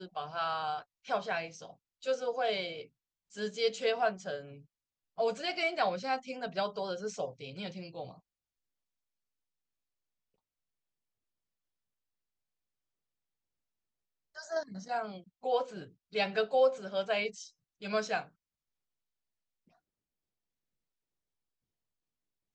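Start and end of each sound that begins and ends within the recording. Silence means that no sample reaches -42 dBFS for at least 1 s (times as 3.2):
14.37–18.23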